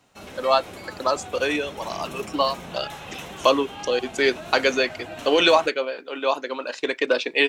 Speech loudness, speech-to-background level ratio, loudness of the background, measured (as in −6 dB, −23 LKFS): −23.5 LKFS, 14.5 dB, −38.0 LKFS